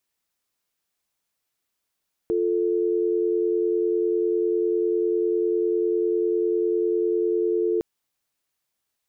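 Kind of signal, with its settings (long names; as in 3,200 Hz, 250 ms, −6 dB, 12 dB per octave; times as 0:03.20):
call progress tone dial tone, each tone −22.5 dBFS 5.51 s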